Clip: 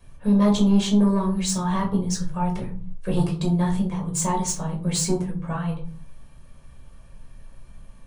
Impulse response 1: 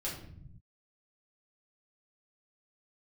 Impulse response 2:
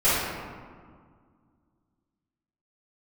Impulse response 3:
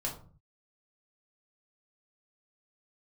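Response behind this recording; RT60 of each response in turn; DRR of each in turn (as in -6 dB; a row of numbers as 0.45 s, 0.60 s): 3; 0.65 s, 1.9 s, 0.45 s; -6.5 dB, -16.0 dB, -1.5 dB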